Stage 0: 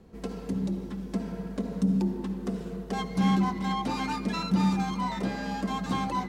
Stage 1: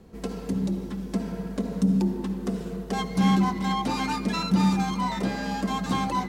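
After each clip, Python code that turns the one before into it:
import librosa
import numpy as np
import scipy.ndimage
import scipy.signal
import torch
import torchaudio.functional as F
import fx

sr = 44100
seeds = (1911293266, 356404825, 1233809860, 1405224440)

y = fx.high_shelf(x, sr, hz=5600.0, db=4.5)
y = y * 10.0 ** (3.0 / 20.0)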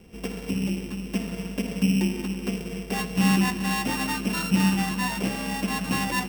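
y = np.r_[np.sort(x[:len(x) // 16 * 16].reshape(-1, 16), axis=1).ravel(), x[len(x) // 16 * 16:]]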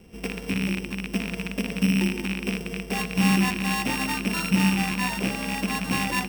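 y = fx.rattle_buzz(x, sr, strikes_db=-31.0, level_db=-18.0)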